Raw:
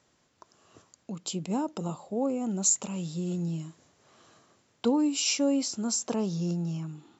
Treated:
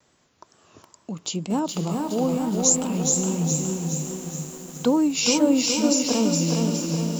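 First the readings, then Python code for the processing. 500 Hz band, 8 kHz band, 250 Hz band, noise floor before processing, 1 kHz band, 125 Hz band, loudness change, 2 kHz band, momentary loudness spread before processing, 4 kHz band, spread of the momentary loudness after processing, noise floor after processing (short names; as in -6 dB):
+7.5 dB, n/a, +7.5 dB, -69 dBFS, +7.5 dB, +7.5 dB, +7.0 dB, +8.5 dB, 11 LU, +8.0 dB, 11 LU, -63 dBFS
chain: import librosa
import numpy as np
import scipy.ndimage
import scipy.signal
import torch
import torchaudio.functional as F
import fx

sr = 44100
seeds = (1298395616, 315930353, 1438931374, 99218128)

y = fx.wow_flutter(x, sr, seeds[0], rate_hz=2.1, depth_cents=90.0)
y = fx.echo_diffused(y, sr, ms=502, feedback_pct=55, wet_db=-9.5)
y = fx.echo_crushed(y, sr, ms=416, feedback_pct=55, bits=8, wet_db=-3.5)
y = y * 10.0 ** (5.0 / 20.0)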